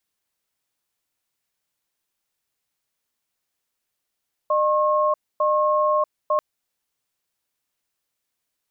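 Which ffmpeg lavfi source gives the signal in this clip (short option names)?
-f lavfi -i "aevalsrc='0.106*(sin(2*PI*607*t)+sin(2*PI*1080*t))*clip(min(mod(t,0.9),0.64-mod(t,0.9))/0.005,0,1)':d=1.89:s=44100"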